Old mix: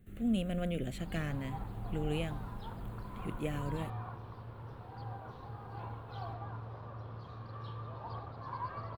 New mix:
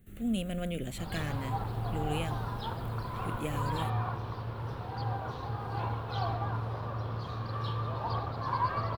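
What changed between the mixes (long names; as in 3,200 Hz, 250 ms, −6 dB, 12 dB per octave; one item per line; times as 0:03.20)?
background +9.5 dB
master: add high-shelf EQ 3,800 Hz +8.5 dB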